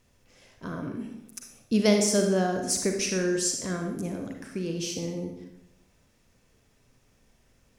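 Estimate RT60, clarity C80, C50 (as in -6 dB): 0.85 s, 7.0 dB, 4.5 dB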